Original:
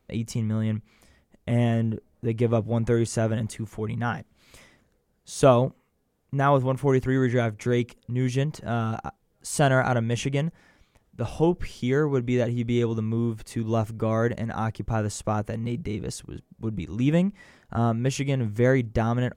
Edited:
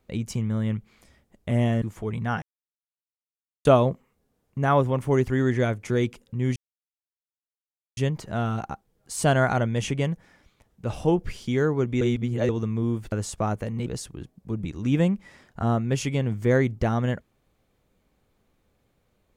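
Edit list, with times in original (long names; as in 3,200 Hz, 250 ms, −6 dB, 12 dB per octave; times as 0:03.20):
0:01.82–0:03.58: remove
0:04.18–0:05.41: silence
0:08.32: splice in silence 1.41 s
0:12.36–0:12.84: reverse
0:13.47–0:14.99: remove
0:15.73–0:16.00: remove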